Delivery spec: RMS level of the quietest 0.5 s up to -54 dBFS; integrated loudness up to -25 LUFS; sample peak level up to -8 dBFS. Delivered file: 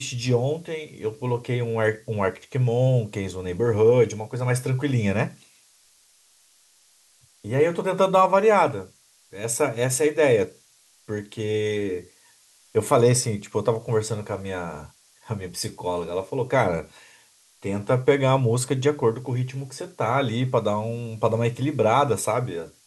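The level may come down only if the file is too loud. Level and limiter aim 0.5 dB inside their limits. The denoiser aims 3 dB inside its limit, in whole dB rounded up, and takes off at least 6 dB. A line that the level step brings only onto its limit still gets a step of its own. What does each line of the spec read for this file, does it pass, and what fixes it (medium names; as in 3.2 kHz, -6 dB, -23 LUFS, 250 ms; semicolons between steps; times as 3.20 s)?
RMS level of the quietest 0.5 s -59 dBFS: pass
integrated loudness -23.5 LUFS: fail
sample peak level -5.5 dBFS: fail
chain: trim -2 dB; peak limiter -8.5 dBFS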